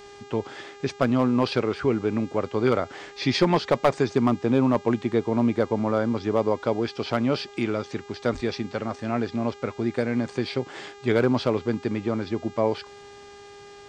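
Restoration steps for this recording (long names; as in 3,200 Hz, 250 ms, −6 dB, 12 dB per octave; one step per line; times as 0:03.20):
clipped peaks rebuilt −11 dBFS
hum removal 405 Hz, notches 19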